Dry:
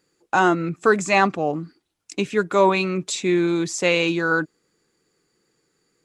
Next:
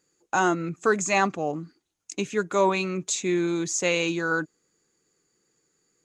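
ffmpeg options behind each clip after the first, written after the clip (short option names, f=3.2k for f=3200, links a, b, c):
-af "equalizer=f=6.6k:t=o:w=0.24:g=12,volume=-5dB"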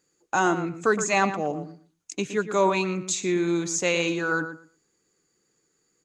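-filter_complex "[0:a]asplit=2[a][b];[b]adelay=117,lowpass=f=2.8k:p=1,volume=-10dB,asplit=2[c][d];[d]adelay=117,lowpass=f=2.8k:p=1,volume=0.18,asplit=2[e][f];[f]adelay=117,lowpass=f=2.8k:p=1,volume=0.18[g];[a][c][e][g]amix=inputs=4:normalize=0"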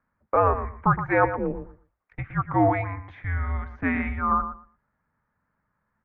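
-af "highpass=f=260:t=q:w=0.5412,highpass=f=260:t=q:w=1.307,lowpass=f=2.1k:t=q:w=0.5176,lowpass=f=2.1k:t=q:w=0.7071,lowpass=f=2.1k:t=q:w=1.932,afreqshift=-270,lowshelf=f=330:g=-7.5,volume=5dB"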